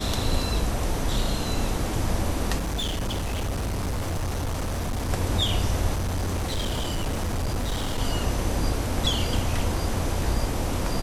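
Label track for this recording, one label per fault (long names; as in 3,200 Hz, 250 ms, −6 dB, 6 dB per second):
2.580000	5.110000	clipping −24.5 dBFS
5.940000	7.990000	clipping −23 dBFS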